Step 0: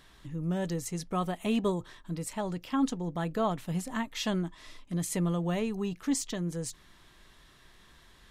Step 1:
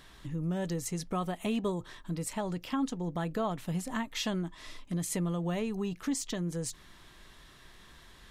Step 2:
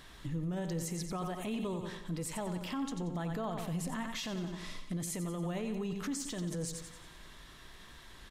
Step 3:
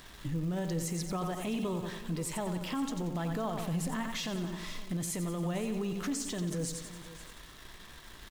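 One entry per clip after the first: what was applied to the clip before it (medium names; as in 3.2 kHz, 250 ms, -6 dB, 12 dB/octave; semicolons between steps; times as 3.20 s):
compression 2:1, threshold -36 dBFS, peak gain reduction 8 dB; trim +3 dB
feedback delay 90 ms, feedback 48%, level -9.5 dB; peak limiter -30.5 dBFS, peak gain reduction 10 dB; feedback comb 55 Hz, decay 2 s, mix 40%; trim +5 dB
in parallel at -9 dB: word length cut 8-bit, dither none; on the sum: crackle 250 per s -43 dBFS; delay 519 ms -16 dB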